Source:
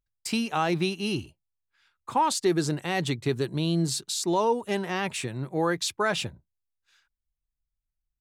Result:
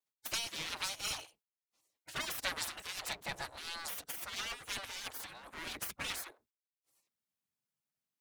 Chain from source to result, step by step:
lower of the sound and its delayed copy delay 4.7 ms
gate on every frequency bin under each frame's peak −20 dB weak
level +2.5 dB

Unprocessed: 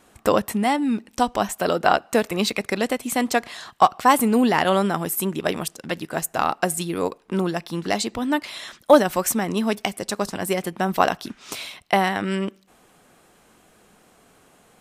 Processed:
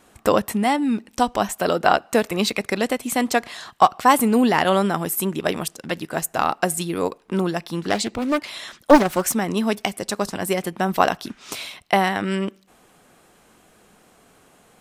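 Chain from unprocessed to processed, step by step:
0:07.89–0:09.33: highs frequency-modulated by the lows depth 0.47 ms
level +1 dB

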